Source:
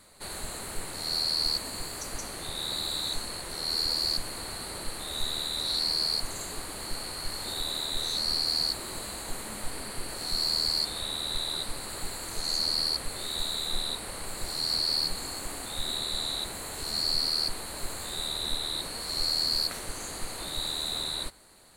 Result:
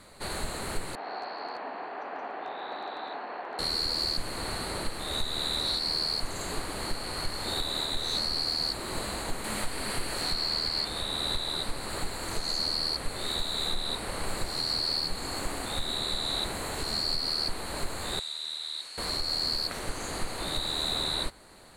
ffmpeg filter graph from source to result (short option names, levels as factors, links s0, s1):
-filter_complex "[0:a]asettb=1/sr,asplit=3[s0][s1][s2];[s0]atrim=end=0.954[s3];[s1]atrim=start=0.95:end=3.59,asetpts=PTS-STARTPTS,afade=t=in:d=0.004:c=qsin,afade=t=out:st=2.636:d=0.004:c=qsin,highpass=f=310:w=0.5412,highpass=f=310:w=1.3066,equalizer=f=340:t=q:w=4:g=-7,equalizer=f=520:t=q:w=4:g=-5,equalizer=f=750:t=q:w=4:g=7,equalizer=f=1300:t=q:w=4:g=-3,equalizer=f=2100:t=q:w=4:g=-6,lowpass=f=2300:w=0.5412,lowpass=f=2300:w=1.3066,aeval=exprs='0.0224*(abs(mod(val(0)/0.0224+3,4)-2)-1)':c=same[s4];[s2]atrim=start=3.586[s5];[s3][s4]acrossfade=d=0.004:c1=hsin:c2=qsin[s6];[s6][s5]acrossfade=d=0.004:c1=qsin:c2=hsin,asettb=1/sr,asplit=3[s7][s8][s9];[s7]atrim=end=9.444[s10];[s8]atrim=start=9.44:end=10.88,asetpts=PTS-STARTPTS,afade=t=in:d=0.004:c=qsin,afade=t=out:st=1.436:d=0.004:c=qsin,highshelf=f=2400:g=10,acrossover=split=3300[s11][s12];[s12]acompressor=threshold=0.0224:ratio=4:attack=1:release=60[s13];[s11][s13]amix=inputs=2:normalize=0[s14];[s9]atrim=start=10.876[s15];[s10][s14]acrossfade=d=0.004:c1=hsin:c2=qsin[s16];[s16][s15]acrossfade=d=0.004:c1=qsin:c2=hsin,asettb=1/sr,asplit=3[s17][s18][s19];[s17]atrim=end=18.194[s20];[s18]atrim=start=18.19:end=18.98,asetpts=PTS-STARTPTS,afade=t=in:d=0.004:c=qsin,afade=t=out:st=0.786:d=0.004:c=qsin,lowpass=5900,aderivative[s21];[s19]atrim=start=18.976[s22];[s20][s21]acrossfade=d=0.004:c1=hsin:c2=qsin[s23];[s23][s22]acrossfade=d=0.004:c1=qsin:c2=hsin,aemphasis=mode=reproduction:type=cd,alimiter=level_in=1.26:limit=0.0631:level=0:latency=1:release=280,volume=0.794,volume=2"